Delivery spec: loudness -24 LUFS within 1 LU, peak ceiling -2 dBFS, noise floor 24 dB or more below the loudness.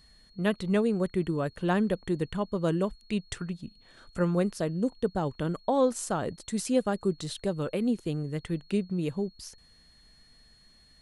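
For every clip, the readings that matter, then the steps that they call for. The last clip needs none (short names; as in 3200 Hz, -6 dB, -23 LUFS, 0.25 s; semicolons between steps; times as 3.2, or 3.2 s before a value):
steady tone 4300 Hz; tone level -59 dBFS; loudness -30.0 LUFS; peak -13.0 dBFS; loudness target -24.0 LUFS
-> notch 4300 Hz, Q 30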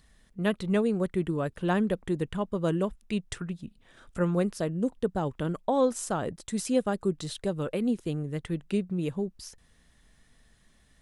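steady tone none; loudness -30.0 LUFS; peak -13.0 dBFS; loudness target -24.0 LUFS
-> gain +6 dB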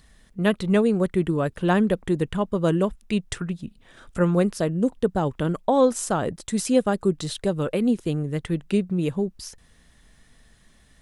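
loudness -24.0 LUFS; peak -7.0 dBFS; noise floor -57 dBFS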